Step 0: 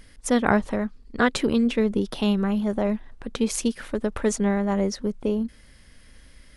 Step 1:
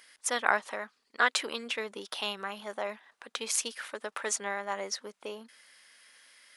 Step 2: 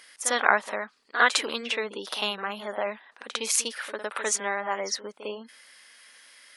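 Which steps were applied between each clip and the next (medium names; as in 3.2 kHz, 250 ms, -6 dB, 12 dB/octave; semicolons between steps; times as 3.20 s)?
high-pass 950 Hz 12 dB/octave
reverse echo 53 ms -10.5 dB; spectral gate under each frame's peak -30 dB strong; trim +5 dB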